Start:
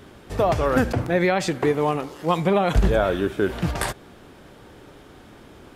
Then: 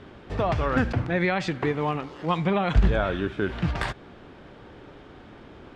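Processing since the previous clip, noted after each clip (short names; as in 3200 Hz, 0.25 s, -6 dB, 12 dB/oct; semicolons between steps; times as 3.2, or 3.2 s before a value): LPF 3600 Hz 12 dB/oct; dynamic EQ 500 Hz, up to -7 dB, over -34 dBFS, Q 0.75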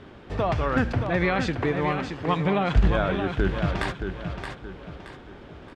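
feedback echo 0.623 s, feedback 37%, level -7 dB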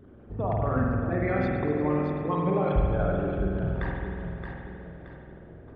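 formant sharpening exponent 2; spring tank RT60 2.2 s, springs 47 ms, chirp 75 ms, DRR -1.5 dB; gain -6 dB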